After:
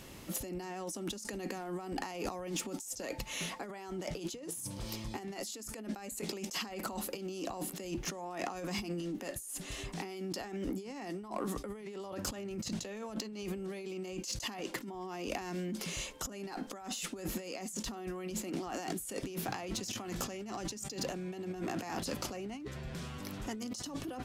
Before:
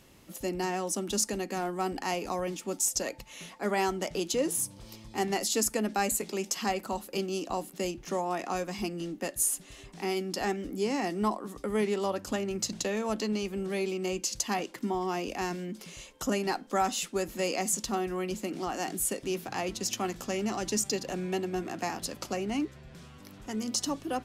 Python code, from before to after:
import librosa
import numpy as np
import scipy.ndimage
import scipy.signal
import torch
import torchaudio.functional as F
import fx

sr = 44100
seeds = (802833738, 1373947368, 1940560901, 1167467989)

y = fx.over_compress(x, sr, threshold_db=-40.0, ratio=-1.0)
y = 10.0 ** (-26.5 / 20.0) * np.tanh(y / 10.0 ** (-26.5 / 20.0))